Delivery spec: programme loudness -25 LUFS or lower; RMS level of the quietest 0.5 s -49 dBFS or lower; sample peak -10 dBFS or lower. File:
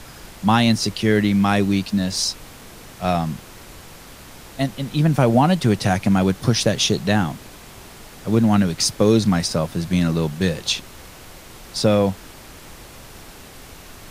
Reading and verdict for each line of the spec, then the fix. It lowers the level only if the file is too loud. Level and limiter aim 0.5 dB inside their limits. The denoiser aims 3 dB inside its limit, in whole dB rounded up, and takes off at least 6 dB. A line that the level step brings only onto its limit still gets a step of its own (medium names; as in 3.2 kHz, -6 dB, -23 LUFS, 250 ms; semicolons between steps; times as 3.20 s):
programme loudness -19.5 LUFS: fail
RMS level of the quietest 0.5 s -41 dBFS: fail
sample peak -3.0 dBFS: fail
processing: noise reduction 6 dB, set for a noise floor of -41 dBFS; trim -6 dB; peak limiter -10.5 dBFS